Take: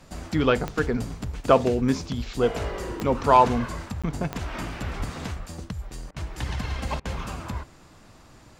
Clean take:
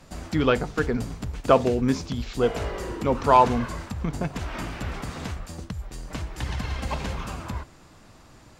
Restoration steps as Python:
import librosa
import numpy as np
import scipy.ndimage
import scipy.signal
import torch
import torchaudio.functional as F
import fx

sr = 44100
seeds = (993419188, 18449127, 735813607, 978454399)

y = fx.fix_declick_ar(x, sr, threshold=10.0)
y = fx.highpass(y, sr, hz=140.0, slope=24, at=(4.98, 5.1), fade=0.02)
y = fx.fix_interpolate(y, sr, at_s=(4.02,), length_ms=16.0)
y = fx.fix_interpolate(y, sr, at_s=(6.11, 7.0), length_ms=52.0)